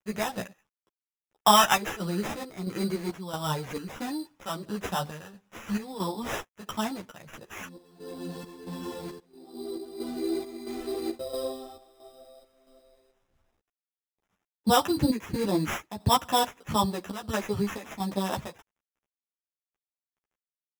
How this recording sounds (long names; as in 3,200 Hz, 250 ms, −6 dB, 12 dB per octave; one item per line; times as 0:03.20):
aliases and images of a low sample rate 4,400 Hz, jitter 0%
chopped level 1.5 Hz, depth 65%, duty 65%
a quantiser's noise floor 12 bits, dither none
a shimmering, thickened sound